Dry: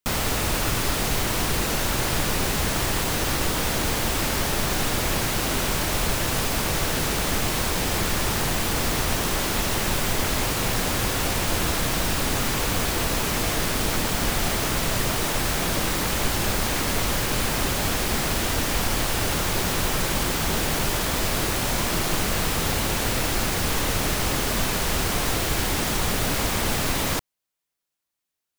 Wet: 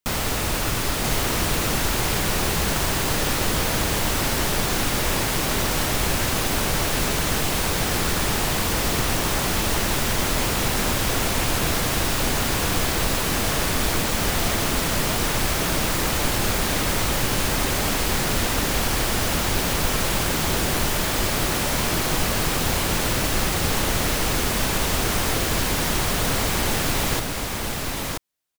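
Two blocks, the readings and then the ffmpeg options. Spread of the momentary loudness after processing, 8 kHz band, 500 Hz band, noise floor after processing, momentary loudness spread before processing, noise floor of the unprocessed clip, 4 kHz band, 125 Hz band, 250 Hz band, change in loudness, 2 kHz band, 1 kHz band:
0 LU, +1.5 dB, +1.5 dB, -25 dBFS, 0 LU, -64 dBFS, +1.5 dB, +1.5 dB, +1.5 dB, +1.5 dB, +1.5 dB, +1.5 dB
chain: -af "aecho=1:1:982:0.668"

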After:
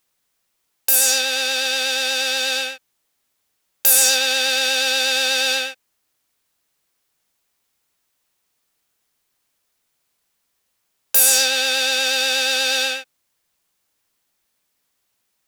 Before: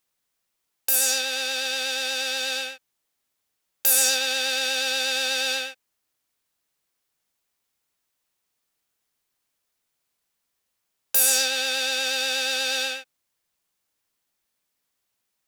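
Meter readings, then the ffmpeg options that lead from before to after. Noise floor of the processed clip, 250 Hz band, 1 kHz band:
-72 dBFS, +5.0 dB, +6.0 dB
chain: -af "acontrast=61"

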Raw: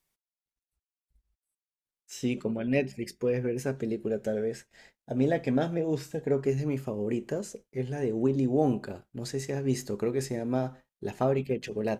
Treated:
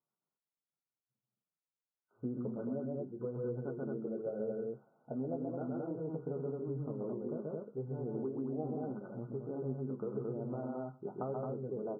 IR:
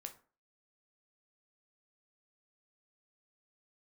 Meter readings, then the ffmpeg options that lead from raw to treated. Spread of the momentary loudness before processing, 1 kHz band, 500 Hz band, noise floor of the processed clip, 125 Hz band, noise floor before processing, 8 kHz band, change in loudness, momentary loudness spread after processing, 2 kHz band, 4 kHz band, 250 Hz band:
9 LU, -10.0 dB, -9.0 dB, under -85 dBFS, -9.0 dB, under -85 dBFS, under -35 dB, -9.5 dB, 4 LU, -21.0 dB, under -35 dB, -9.5 dB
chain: -af "aecho=1:1:131.2|218.7:0.708|0.708,acompressor=threshold=-28dB:ratio=6,flanger=delay=8.7:depth=4:regen=-39:speed=0.87:shape=sinusoidal,afftfilt=real='re*between(b*sr/4096,110,1500)':imag='im*between(b*sr/4096,110,1500)':win_size=4096:overlap=0.75,volume=-3dB"

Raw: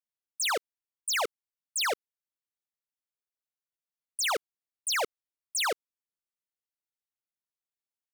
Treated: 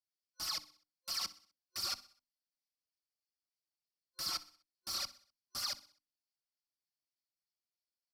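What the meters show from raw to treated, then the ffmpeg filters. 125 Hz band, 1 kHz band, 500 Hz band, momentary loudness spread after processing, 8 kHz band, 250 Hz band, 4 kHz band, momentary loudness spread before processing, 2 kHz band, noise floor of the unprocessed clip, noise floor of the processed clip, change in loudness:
n/a, -16.0 dB, -25.5 dB, 9 LU, -10.5 dB, -9.5 dB, -5.5 dB, 9 LU, -19.0 dB, under -85 dBFS, under -85 dBFS, -9.0 dB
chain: -filter_complex "[0:a]highpass=f=98:w=0.5412,highpass=f=98:w=1.3066,bandreject=f=50:t=h:w=6,bandreject=f=100:t=h:w=6,bandreject=f=150:t=h:w=6,bandreject=f=200:t=h:w=6,bandreject=f=250:t=h:w=6,bandreject=f=300:t=h:w=6,asplit=2[a][b];[b]acrusher=samples=14:mix=1:aa=0.000001:lfo=1:lforange=22.4:lforate=3.3,volume=-6dB[c];[a][c]amix=inputs=2:normalize=0,asuperstop=centerf=1300:order=8:qfactor=1.1,aeval=exprs='(mod(23.7*val(0)+1,2)-1)/23.7':c=same,superequalizer=7b=0.251:10b=3.55:14b=2.82,asplit=2[d][e];[e]aecho=0:1:63|126|189|252:0.126|0.0567|0.0255|0.0115[f];[d][f]amix=inputs=2:normalize=0,aresample=32000,aresample=44100,equalizer=f=4.5k:w=1.7:g=8,asplit=2[g][h];[h]adelay=4.3,afreqshift=0.3[i];[g][i]amix=inputs=2:normalize=1,volume=-9dB"

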